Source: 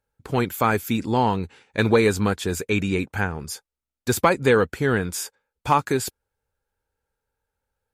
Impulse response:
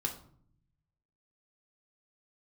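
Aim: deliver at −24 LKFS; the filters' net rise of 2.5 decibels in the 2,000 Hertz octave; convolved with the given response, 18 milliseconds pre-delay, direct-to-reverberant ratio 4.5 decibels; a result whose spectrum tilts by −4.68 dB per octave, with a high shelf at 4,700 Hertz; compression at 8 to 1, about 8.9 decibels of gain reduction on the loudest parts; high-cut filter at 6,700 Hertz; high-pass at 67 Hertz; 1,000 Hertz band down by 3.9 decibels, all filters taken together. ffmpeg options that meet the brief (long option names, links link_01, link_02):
-filter_complex "[0:a]highpass=67,lowpass=6700,equalizer=frequency=1000:width_type=o:gain=-6.5,equalizer=frequency=2000:width_type=o:gain=4.5,highshelf=frequency=4700:gain=6.5,acompressor=threshold=-22dB:ratio=8,asplit=2[link_01][link_02];[1:a]atrim=start_sample=2205,adelay=18[link_03];[link_02][link_03]afir=irnorm=-1:irlink=0,volume=-7dB[link_04];[link_01][link_04]amix=inputs=2:normalize=0,volume=3dB"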